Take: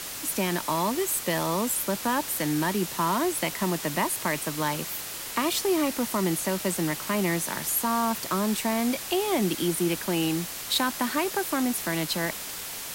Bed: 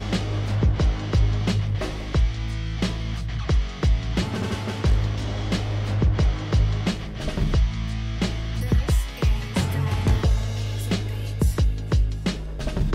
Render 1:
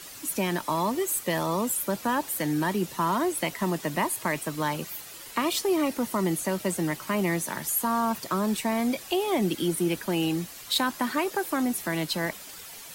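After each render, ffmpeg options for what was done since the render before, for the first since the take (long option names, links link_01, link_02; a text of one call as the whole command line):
ffmpeg -i in.wav -af "afftdn=noise_reduction=10:noise_floor=-37" out.wav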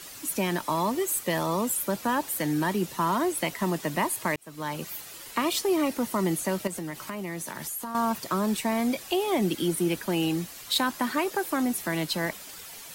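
ffmpeg -i in.wav -filter_complex "[0:a]asettb=1/sr,asplit=3[link_01][link_02][link_03];[link_01]atrim=end=6.674[link_04];[link_02]atrim=start=6.67:end=7.95,asetpts=PTS-STARTPTS,afade=type=in:duration=0.004:curve=qsin,afade=type=out:start_time=1.276:duration=0.004:curve=qsin,acompressor=threshold=-31dB:ratio=6:attack=3.2:release=140:knee=1:detection=peak[link_05];[link_03]atrim=start=7.946[link_06];[link_04][link_05]acrossfade=duration=0.004:curve1=hsin:curve2=qsin[link_07];[link_07][link_06]acrossfade=duration=0.004:curve1=qsin:curve2=hsin,asplit=2[link_08][link_09];[link_08]atrim=end=4.36,asetpts=PTS-STARTPTS,afade=type=out:start_time=4.356:duration=0.004:curve=hsin[link_10];[link_09]atrim=start=4.36,asetpts=PTS-STARTPTS,afade=type=in:duration=0.53[link_11];[link_10][link_11]concat=n=2:v=0:a=1" out.wav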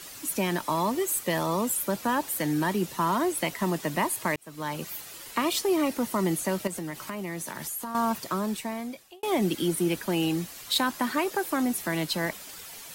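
ffmpeg -i in.wav -filter_complex "[0:a]asplit=2[link_01][link_02];[link_01]atrim=end=9.23,asetpts=PTS-STARTPTS,afade=type=out:start_time=8.13:duration=1.1[link_03];[link_02]atrim=start=9.23,asetpts=PTS-STARTPTS,afade=type=in:duration=0.004:curve=hsin[link_04];[link_03][link_04]concat=n=2:v=0:a=1" out.wav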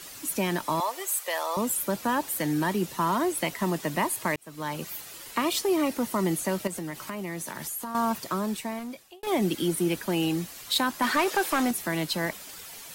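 ffmpeg -i in.wav -filter_complex "[0:a]asettb=1/sr,asplit=3[link_01][link_02][link_03];[link_01]atrim=end=0.804[link_04];[link_02]atrim=start=0.8:end=1.57,asetpts=PTS-STARTPTS,afade=type=in:duration=0.004:curve=qsin,afade=type=out:start_time=0.766:duration=0.004:curve=qsin,highpass=frequency=540:width=0.5412,highpass=frequency=540:width=1.3066[link_05];[link_03]atrim=start=1.566[link_06];[link_04][link_05]acrossfade=duration=0.004:curve1=hsin:curve2=qsin[link_07];[link_07][link_06]acrossfade=duration=0.004:curve1=qsin:curve2=hsin,asettb=1/sr,asplit=3[link_08][link_09][link_10];[link_08]atrim=end=8.794[link_11];[link_09]atrim=start=8.79:end=9.27,asetpts=PTS-STARTPTS,afade=type=in:duration=0.004:curve=qsin,afade=type=out:start_time=0.476:duration=0.004:curve=qsin,volume=33dB,asoftclip=hard,volume=-33dB[link_12];[link_10]atrim=start=9.266[link_13];[link_11][link_12]acrossfade=duration=0.004:curve1=hsin:curve2=qsin[link_14];[link_14][link_13]acrossfade=duration=0.004:curve1=qsin:curve2=hsin,asettb=1/sr,asplit=3[link_15][link_16][link_17];[link_15]atrim=end=11.024[link_18];[link_16]atrim=start=11.02:end=11.71,asetpts=PTS-STARTPTS,afade=type=in:duration=0.004:curve=qsin,afade=type=out:start_time=0.686:duration=0.004:curve=qsin,asplit=2[link_19][link_20];[link_20]highpass=frequency=720:poles=1,volume=15dB,asoftclip=type=tanh:threshold=-15dB[link_21];[link_19][link_21]amix=inputs=2:normalize=0,lowpass=frequency=5800:poles=1,volume=-6dB[link_22];[link_17]atrim=start=11.706[link_23];[link_18][link_22]acrossfade=duration=0.004:curve1=hsin:curve2=qsin[link_24];[link_24][link_23]acrossfade=duration=0.004:curve1=qsin:curve2=hsin" out.wav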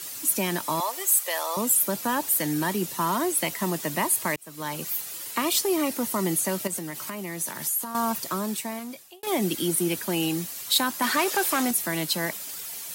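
ffmpeg -i in.wav -af "highpass=88,aemphasis=mode=production:type=cd" out.wav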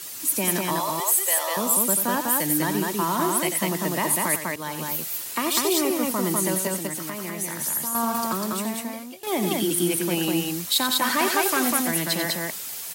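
ffmpeg -i in.wav -af "aecho=1:1:90.38|198.3:0.355|0.794" out.wav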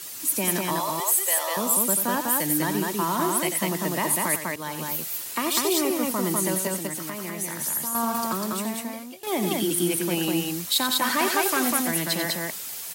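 ffmpeg -i in.wav -af "volume=-1dB" out.wav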